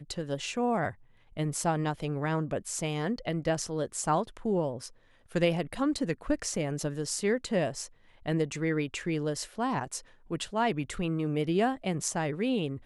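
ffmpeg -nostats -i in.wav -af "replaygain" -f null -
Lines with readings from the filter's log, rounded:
track_gain = +10.9 dB
track_peak = 0.175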